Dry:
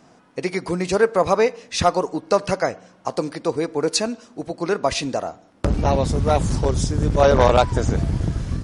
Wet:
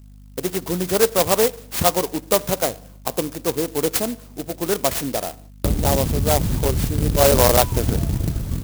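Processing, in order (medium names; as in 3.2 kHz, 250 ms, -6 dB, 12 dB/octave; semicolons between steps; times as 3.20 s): gate with hold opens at -39 dBFS; hum 50 Hz, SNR 23 dB; sampling jitter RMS 0.14 ms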